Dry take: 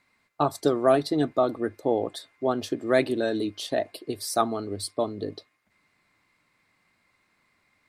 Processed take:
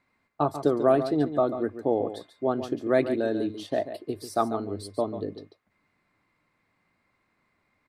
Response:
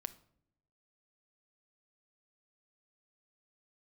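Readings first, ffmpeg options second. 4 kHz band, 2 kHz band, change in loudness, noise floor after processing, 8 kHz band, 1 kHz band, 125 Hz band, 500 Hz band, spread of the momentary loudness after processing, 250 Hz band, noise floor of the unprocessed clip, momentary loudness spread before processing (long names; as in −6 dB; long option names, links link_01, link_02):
−8.5 dB, −4.0 dB, −0.5 dB, −73 dBFS, −10.5 dB, −1.5 dB, +0.5 dB, −0.5 dB, 11 LU, 0.0 dB, −70 dBFS, 9 LU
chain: -af "highshelf=frequency=2200:gain=-11.5,aecho=1:1:141:0.282"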